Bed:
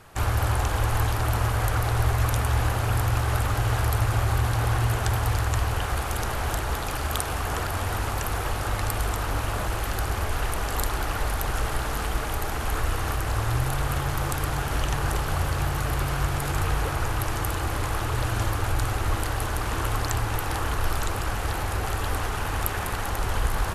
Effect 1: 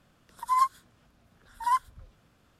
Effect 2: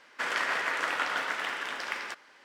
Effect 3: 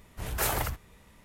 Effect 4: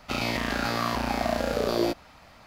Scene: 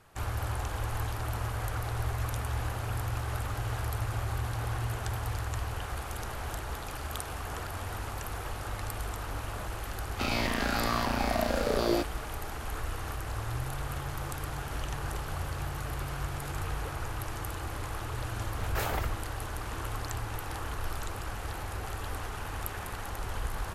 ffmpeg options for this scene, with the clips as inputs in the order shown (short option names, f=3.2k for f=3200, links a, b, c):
-filter_complex "[0:a]volume=-9.5dB[a];[3:a]equalizer=f=10k:t=o:w=1.4:g=-12.5[b];[4:a]atrim=end=2.46,asetpts=PTS-STARTPTS,volume=-2.5dB,afade=t=in:d=0.004:c=hsin,afade=t=out:st=2.456:d=0.004:c=hsin,adelay=445410S[c];[b]atrim=end=1.24,asetpts=PTS-STARTPTS,volume=-2dB,afade=t=in:d=0.004:c=hsin,afade=t=out:st=1.236:d=0.004:c=hsin,adelay=18370[d];[a][c][d]amix=inputs=3:normalize=0"